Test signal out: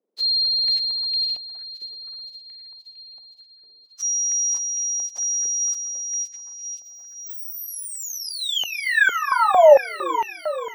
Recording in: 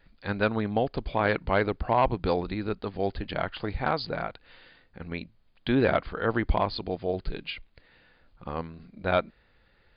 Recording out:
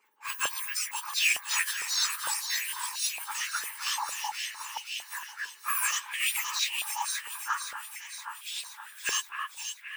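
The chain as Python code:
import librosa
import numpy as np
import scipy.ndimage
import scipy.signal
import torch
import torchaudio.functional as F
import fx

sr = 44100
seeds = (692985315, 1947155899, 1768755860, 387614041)

y = fx.octave_mirror(x, sr, pivot_hz=2000.0)
y = fx.echo_alternate(y, sr, ms=261, hz=2300.0, feedback_pct=79, wet_db=-4.5)
y = fx.filter_held_highpass(y, sr, hz=4.4, low_hz=440.0, high_hz=2600.0)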